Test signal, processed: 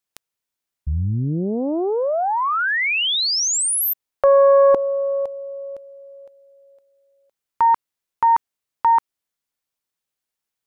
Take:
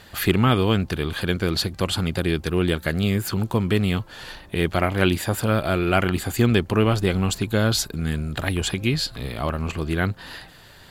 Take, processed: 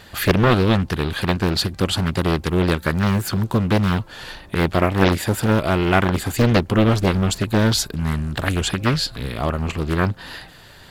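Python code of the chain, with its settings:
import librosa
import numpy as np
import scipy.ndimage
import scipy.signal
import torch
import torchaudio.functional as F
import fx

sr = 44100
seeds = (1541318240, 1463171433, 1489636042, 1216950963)

y = fx.doppler_dist(x, sr, depth_ms=0.93)
y = F.gain(torch.from_numpy(y), 3.0).numpy()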